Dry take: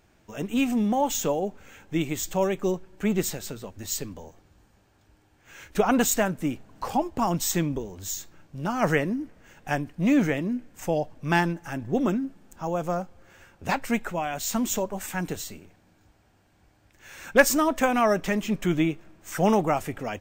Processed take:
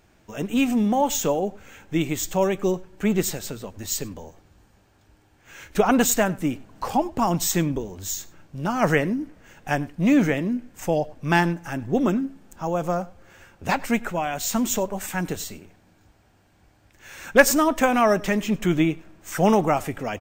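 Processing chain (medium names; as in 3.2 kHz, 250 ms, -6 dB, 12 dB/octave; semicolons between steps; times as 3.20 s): echo from a far wall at 17 m, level -22 dB; trim +3 dB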